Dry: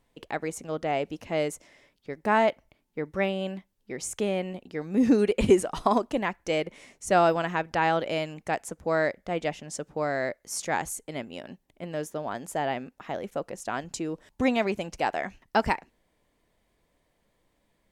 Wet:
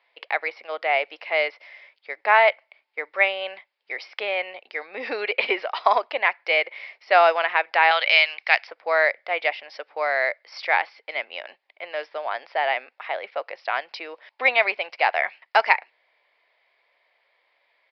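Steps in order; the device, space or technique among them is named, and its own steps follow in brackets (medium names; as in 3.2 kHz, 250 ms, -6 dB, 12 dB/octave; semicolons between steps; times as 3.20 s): 7.91–8.67 s: frequency weighting ITU-R 468; musical greeting card (resampled via 11.025 kHz; high-pass 590 Hz 24 dB/octave; peaking EQ 2.2 kHz +10 dB 0.5 oct); trim +6 dB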